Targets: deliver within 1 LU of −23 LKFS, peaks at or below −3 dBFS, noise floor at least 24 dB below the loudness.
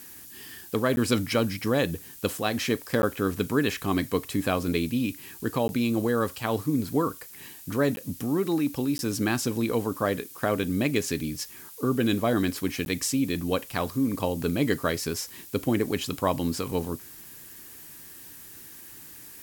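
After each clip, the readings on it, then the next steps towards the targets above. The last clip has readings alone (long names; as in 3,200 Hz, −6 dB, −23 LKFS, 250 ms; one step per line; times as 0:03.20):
number of dropouts 6; longest dropout 11 ms; background noise floor −46 dBFS; target noise floor −52 dBFS; integrated loudness −27.5 LKFS; sample peak −9.5 dBFS; target loudness −23.0 LKFS
→ repair the gap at 0:00.96/0:03.02/0:05.68/0:07.96/0:08.98/0:12.85, 11 ms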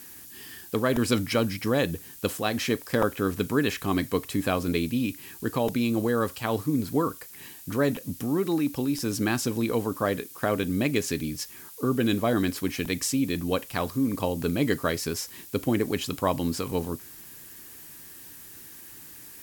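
number of dropouts 0; background noise floor −46 dBFS; target noise floor −52 dBFS
→ broadband denoise 6 dB, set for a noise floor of −46 dBFS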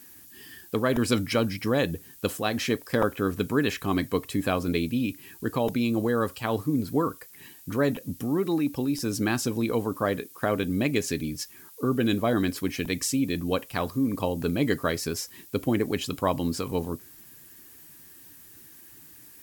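background noise floor −50 dBFS; target noise floor −52 dBFS
→ broadband denoise 6 dB, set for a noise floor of −50 dBFS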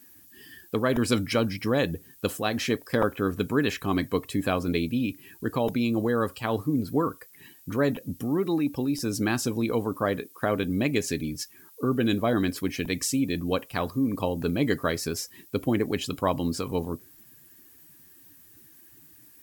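background noise floor −54 dBFS; integrated loudness −27.5 LKFS; sample peak −10.0 dBFS; target loudness −23.0 LKFS
→ level +4.5 dB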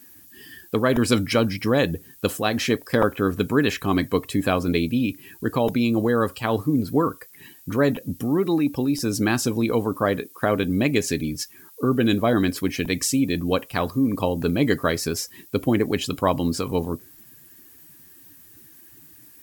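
integrated loudness −23.0 LKFS; sample peak −5.5 dBFS; background noise floor −49 dBFS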